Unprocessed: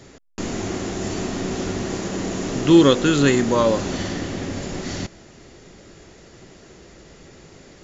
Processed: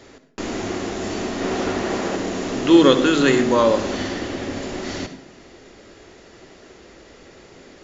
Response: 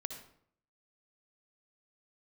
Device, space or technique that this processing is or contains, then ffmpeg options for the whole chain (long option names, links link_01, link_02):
filtered reverb send: -filter_complex "[0:a]asettb=1/sr,asplit=3[link_01][link_02][link_03];[link_01]atrim=end=1.414[link_04];[link_02]atrim=start=1.41:end=2.16,asetpts=PTS-STARTPTS,afade=type=in:duration=0.004:curve=qsin,afade=type=out:start_time=0.746:duration=0.004:curve=qsin,equalizer=frequency=960:width_type=o:width=3:gain=5[link_05];[link_03]atrim=start=2.156[link_06];[link_04][link_05]acrossfade=duration=0.004:curve1=hsin:curve2=qsin[link_07];[link_07][link_06]acrossfade=duration=0.004:curve1=qsin:curve2=hsin,asplit=2[link_08][link_09];[link_09]highpass=frequency=150:width=0.5412,highpass=frequency=150:width=1.3066,lowpass=5900[link_10];[1:a]atrim=start_sample=2205[link_11];[link_10][link_11]afir=irnorm=-1:irlink=0,volume=2.5dB[link_12];[link_08][link_12]amix=inputs=2:normalize=0,volume=-4dB"